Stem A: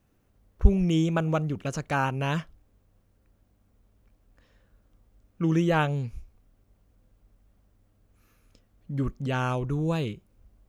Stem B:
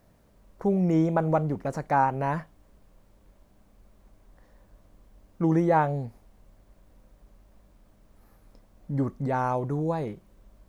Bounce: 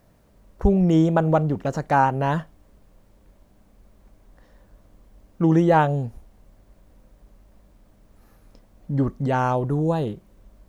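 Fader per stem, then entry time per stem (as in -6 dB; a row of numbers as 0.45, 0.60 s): -4.5, +2.5 dB; 0.00, 0.00 s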